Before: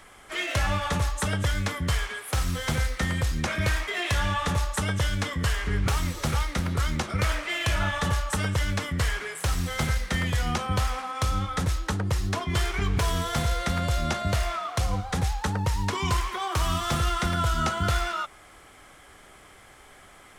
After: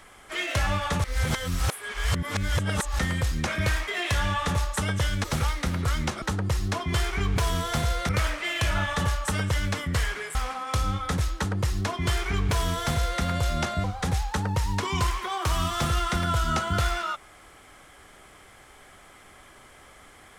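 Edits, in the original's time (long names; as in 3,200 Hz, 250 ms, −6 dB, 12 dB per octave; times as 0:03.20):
0:01.04–0:02.99: reverse
0:05.24–0:06.16: remove
0:09.40–0:10.83: remove
0:11.83–0:13.70: duplicate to 0:07.14
0:14.32–0:14.94: remove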